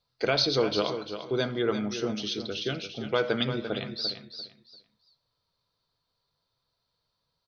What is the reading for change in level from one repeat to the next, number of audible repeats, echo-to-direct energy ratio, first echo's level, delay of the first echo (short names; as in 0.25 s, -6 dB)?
-13.0 dB, 2, -9.5 dB, -9.5 dB, 0.344 s